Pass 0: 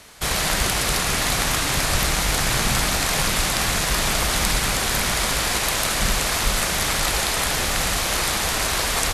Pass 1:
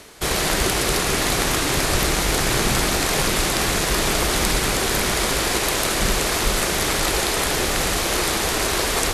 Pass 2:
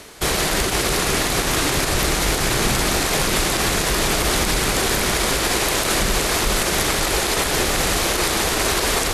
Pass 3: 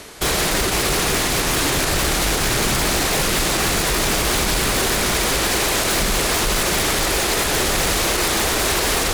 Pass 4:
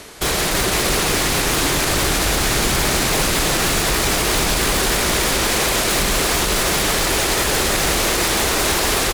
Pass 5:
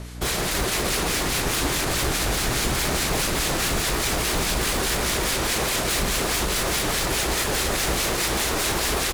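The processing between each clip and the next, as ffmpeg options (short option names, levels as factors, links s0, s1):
-af "equalizer=f=370:w=1.6:g=9.5,areverse,acompressor=mode=upward:threshold=0.0398:ratio=2.5,areverse"
-af "alimiter=level_in=3.55:limit=0.891:release=50:level=0:latency=1,volume=0.398"
-af "aeval=exprs='0.158*(abs(mod(val(0)/0.158+3,4)-2)-1)':c=same,volume=1.33"
-af "aecho=1:1:331:0.531"
-filter_complex "[0:a]aeval=exprs='val(0)+0.0355*(sin(2*PI*60*n/s)+sin(2*PI*2*60*n/s)/2+sin(2*PI*3*60*n/s)/3+sin(2*PI*4*60*n/s)/4+sin(2*PI*5*60*n/s)/5)':c=same,acrossover=split=1400[s0][s1];[s0]aeval=exprs='val(0)*(1-0.5/2+0.5/2*cos(2*PI*4.8*n/s))':c=same[s2];[s1]aeval=exprs='val(0)*(1-0.5/2-0.5/2*cos(2*PI*4.8*n/s))':c=same[s3];[s2][s3]amix=inputs=2:normalize=0,volume=0.668"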